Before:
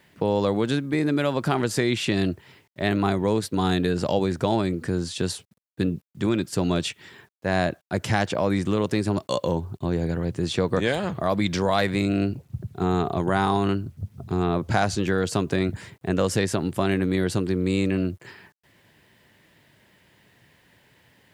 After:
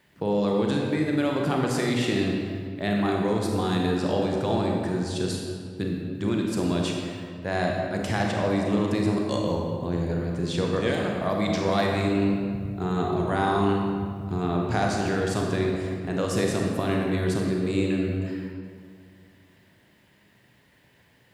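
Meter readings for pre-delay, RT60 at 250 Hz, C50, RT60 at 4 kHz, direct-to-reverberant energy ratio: 31 ms, 2.4 s, 0.5 dB, 1.3 s, −0.5 dB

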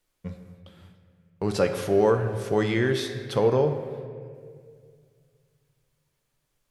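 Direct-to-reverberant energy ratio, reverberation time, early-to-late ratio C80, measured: 6.0 dB, 2.1 s, 9.0 dB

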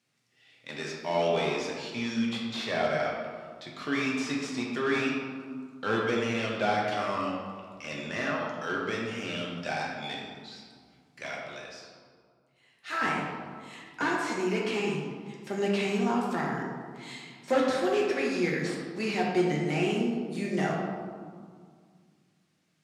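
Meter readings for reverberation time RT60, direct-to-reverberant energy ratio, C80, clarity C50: 2.0 s, −3.0 dB, 3.0 dB, 0.5 dB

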